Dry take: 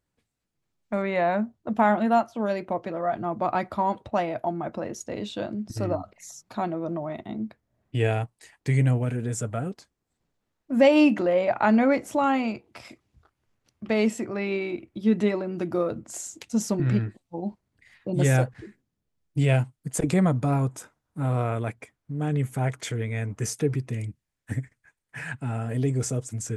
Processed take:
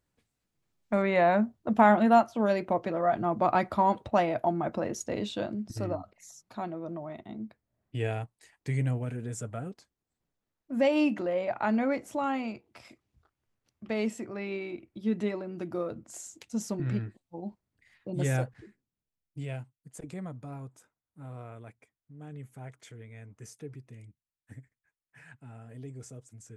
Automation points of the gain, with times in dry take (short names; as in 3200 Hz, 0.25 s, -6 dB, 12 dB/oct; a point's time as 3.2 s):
5.13 s +0.5 dB
6.16 s -7.5 dB
18.51 s -7.5 dB
19.74 s -18 dB